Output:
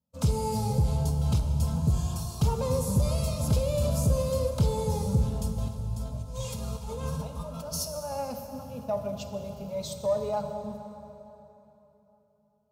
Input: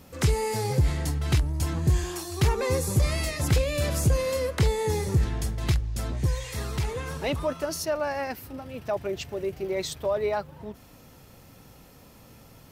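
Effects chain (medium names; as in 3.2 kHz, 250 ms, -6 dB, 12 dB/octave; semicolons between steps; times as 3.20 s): gate -40 dBFS, range -34 dB; peaking EQ 230 Hz +12.5 dB 1.4 oct; 5.68–8.12 s: compressor with a negative ratio -31 dBFS, ratio -1; static phaser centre 780 Hz, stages 4; comb of notches 380 Hz; saturation -12 dBFS, distortion -20 dB; plate-style reverb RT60 3.5 s, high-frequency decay 0.7×, DRR 5 dB; trim -2.5 dB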